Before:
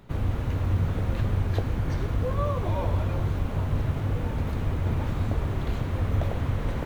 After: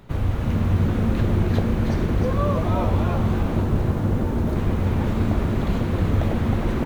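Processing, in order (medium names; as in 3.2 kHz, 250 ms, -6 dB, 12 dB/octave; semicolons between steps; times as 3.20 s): 3.62–4.56 s: peaking EQ 2.6 kHz -6 dB 1.4 oct; frequency-shifting echo 314 ms, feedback 42%, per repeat +130 Hz, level -6 dB; trim +4 dB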